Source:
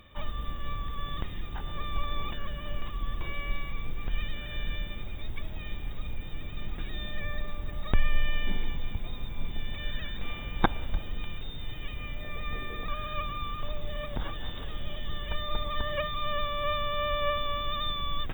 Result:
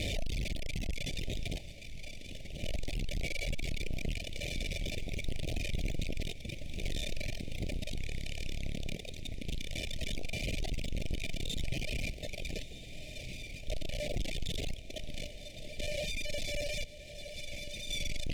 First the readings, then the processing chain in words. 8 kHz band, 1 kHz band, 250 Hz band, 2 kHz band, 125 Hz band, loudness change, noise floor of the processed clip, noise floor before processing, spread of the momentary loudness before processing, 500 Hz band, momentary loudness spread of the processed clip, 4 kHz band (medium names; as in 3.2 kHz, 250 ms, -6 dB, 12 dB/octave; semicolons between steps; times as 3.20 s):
no reading, -22.0 dB, -1.5 dB, -3.5 dB, -2.0 dB, -4.0 dB, -46 dBFS, -38 dBFS, 10 LU, -5.0 dB, 7 LU, -3.0 dB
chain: one-bit comparator; random-step tremolo 1.9 Hz, depth 85%; reverb removal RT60 1.5 s; elliptic band-stop 660–2200 Hz, stop band 60 dB; echo that smears into a reverb 1331 ms, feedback 46%, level -15.5 dB; peak limiter -28 dBFS, peak gain reduction 7 dB; distance through air 54 m; trim +4 dB